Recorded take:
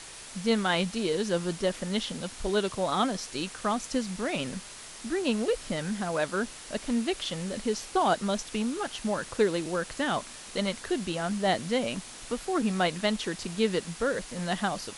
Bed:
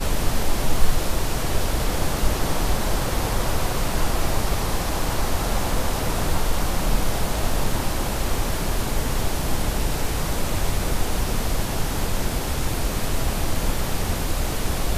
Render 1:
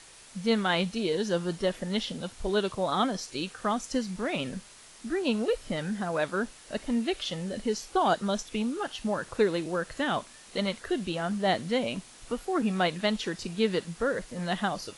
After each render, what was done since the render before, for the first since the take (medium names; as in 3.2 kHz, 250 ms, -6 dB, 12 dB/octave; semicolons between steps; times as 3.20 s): noise print and reduce 7 dB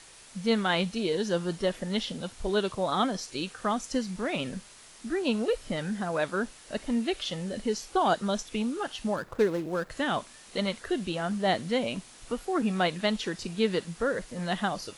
9.16–9.90 s: median filter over 15 samples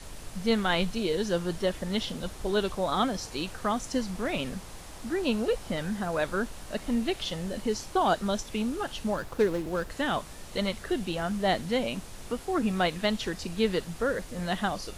add bed -21.5 dB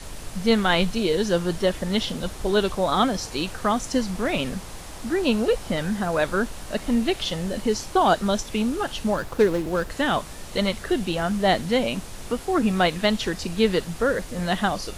trim +6 dB